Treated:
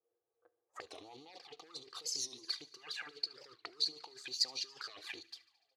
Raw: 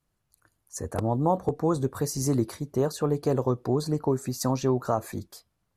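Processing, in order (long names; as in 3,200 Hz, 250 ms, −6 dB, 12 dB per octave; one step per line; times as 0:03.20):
bass and treble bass −10 dB, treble −14 dB
comb filter 2.5 ms, depth 74%
leveller curve on the samples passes 2
compressor whose output falls as the input rises −26 dBFS, ratio −1
flanger swept by the level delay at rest 8.8 ms, full sweep at −22.5 dBFS
envelope filter 490–4,500 Hz, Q 7.8, up, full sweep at −28 dBFS
delay with a high-pass on its return 73 ms, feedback 70%, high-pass 1,800 Hz, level −21 dB
on a send at −20 dB: convolution reverb RT60 0.50 s, pre-delay 6 ms
on the sum: wow of a warped record 45 rpm, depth 160 cents
level +9.5 dB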